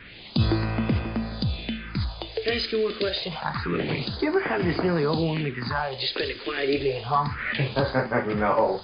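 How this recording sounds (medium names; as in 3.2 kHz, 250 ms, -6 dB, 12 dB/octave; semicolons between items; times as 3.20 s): a quantiser's noise floor 6-bit, dither triangular; phasing stages 4, 0.27 Hz, lowest notch 140–3900 Hz; MP3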